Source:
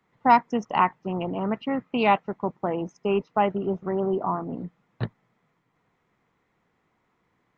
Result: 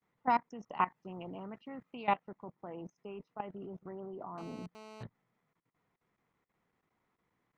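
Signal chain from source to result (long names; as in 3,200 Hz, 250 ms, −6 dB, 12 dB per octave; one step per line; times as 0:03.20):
0:00.76–0:02.02: high-shelf EQ 5,800 Hz +12 dB
output level in coarse steps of 18 dB
0:04.38–0:05.03: phone interference −43 dBFS
level −8 dB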